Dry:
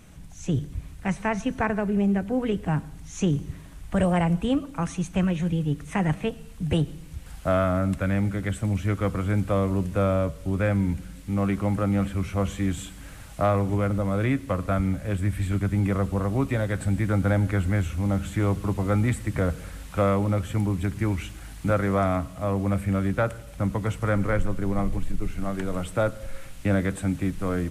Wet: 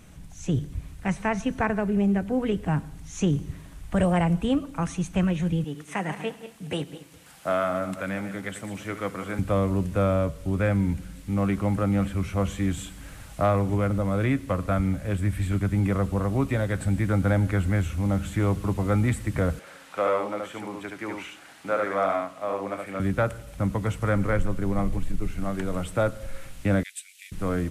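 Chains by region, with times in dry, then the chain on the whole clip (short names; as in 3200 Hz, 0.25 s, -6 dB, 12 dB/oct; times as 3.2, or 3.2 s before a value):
5.64–9.39 regenerating reverse delay 0.103 s, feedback 45%, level -10.5 dB + HPF 160 Hz + low shelf 310 Hz -9 dB
19.59–23 HPF 440 Hz + high shelf 6700 Hz -11.5 dB + echo 73 ms -3 dB
26.83–27.32 steep high-pass 2300 Hz + transient shaper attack +4 dB, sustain -3 dB
whole clip: dry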